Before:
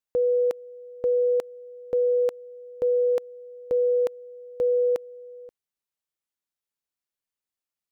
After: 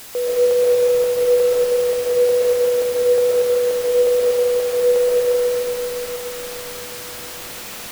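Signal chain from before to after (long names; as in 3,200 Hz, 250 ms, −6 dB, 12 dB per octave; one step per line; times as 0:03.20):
high-pass filter 430 Hz 12 dB per octave
in parallel at +1 dB: brickwall limiter −31 dBFS, peak gain reduction 10.5 dB
on the sum: background noise white −38 dBFS
comb and all-pass reverb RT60 4.6 s, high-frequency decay 0.45×, pre-delay 90 ms, DRR −8.5 dB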